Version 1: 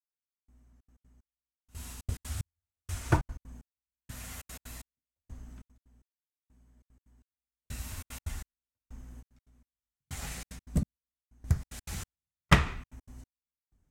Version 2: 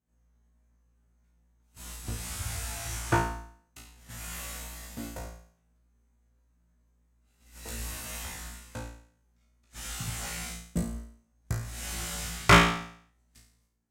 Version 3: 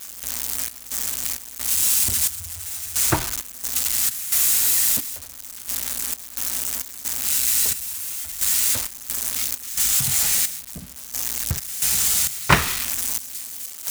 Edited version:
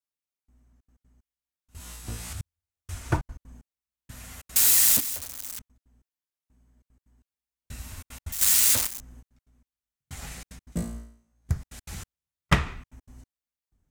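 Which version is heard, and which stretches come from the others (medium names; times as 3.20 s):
1
1.80–2.33 s: from 2
4.56–5.59 s: from 3
8.32–9.00 s: from 3
10.72–11.49 s: from 2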